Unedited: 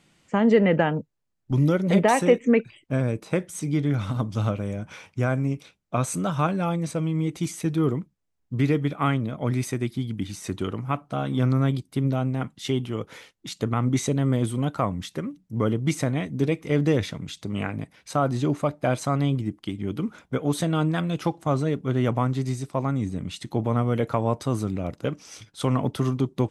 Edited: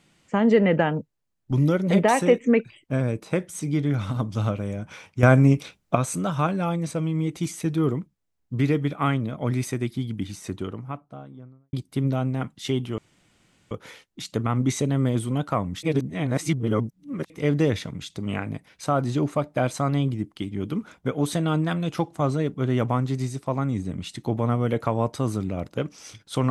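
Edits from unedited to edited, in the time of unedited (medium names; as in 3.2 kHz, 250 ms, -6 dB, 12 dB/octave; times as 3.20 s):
5.23–5.95 s: gain +9 dB
10.08–11.73 s: studio fade out
12.98 s: insert room tone 0.73 s
15.10–16.57 s: reverse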